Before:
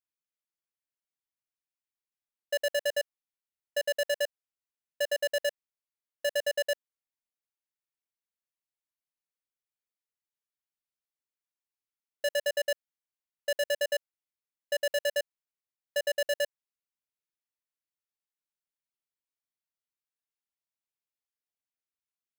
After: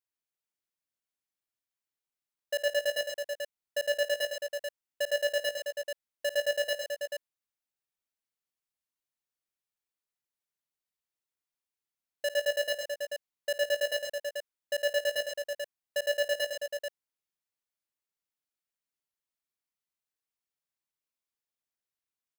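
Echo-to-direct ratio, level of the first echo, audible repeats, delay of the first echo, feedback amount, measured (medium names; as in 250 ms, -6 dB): -3.0 dB, -16.5 dB, 4, 55 ms, no regular repeats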